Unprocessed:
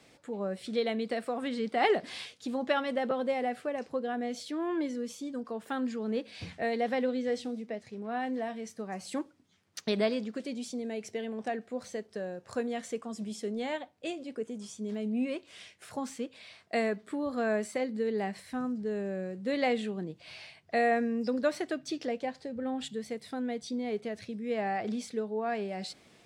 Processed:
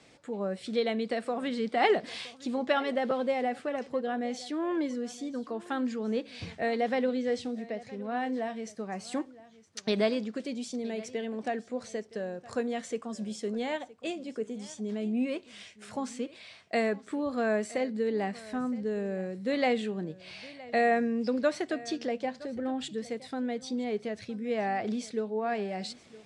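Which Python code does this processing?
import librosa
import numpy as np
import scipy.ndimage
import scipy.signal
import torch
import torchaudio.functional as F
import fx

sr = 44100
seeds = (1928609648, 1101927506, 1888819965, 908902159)

y = scipy.signal.sosfilt(scipy.signal.butter(4, 9400.0, 'lowpass', fs=sr, output='sos'), x)
y = y + 10.0 ** (-19.5 / 20.0) * np.pad(y, (int(966 * sr / 1000.0), 0))[:len(y)]
y = y * 10.0 ** (1.5 / 20.0)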